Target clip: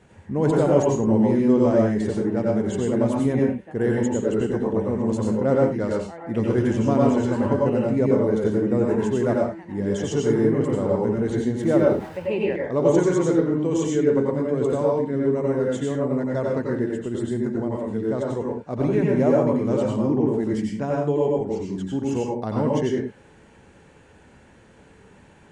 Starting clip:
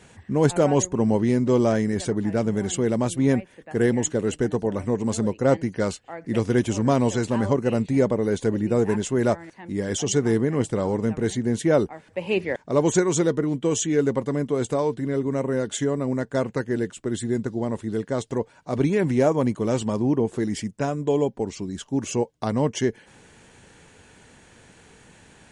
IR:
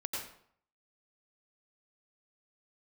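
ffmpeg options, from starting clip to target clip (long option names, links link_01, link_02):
-filter_complex "[0:a]asettb=1/sr,asplit=3[link_01][link_02][link_03];[link_01]atrim=end=11.634[link_04];[link_02]atrim=start=11.63:end=12.18,asetpts=PTS-STARTPTS,afade=type=in:duration=0.004:curve=qsin,afade=type=out:start_time=0.546:duration=0.004:curve=qsin,aeval=exprs='val(0)+0.5*0.0158*sgn(val(0))':channel_layout=same[link_05];[link_03]atrim=start=12.176[link_06];[link_04][link_05]acrossfade=duration=0.004:curve1=hsin:curve2=qsin[link_07];[link_07][link_06]acrossfade=duration=0.004:curve1=qsin:curve2=hsin,highshelf=frequency=2300:gain=-11.5[link_08];[1:a]atrim=start_sample=2205,afade=type=out:start_time=0.26:duration=0.01,atrim=end_sample=11907[link_09];[link_08][link_09]afir=irnorm=-1:irlink=0"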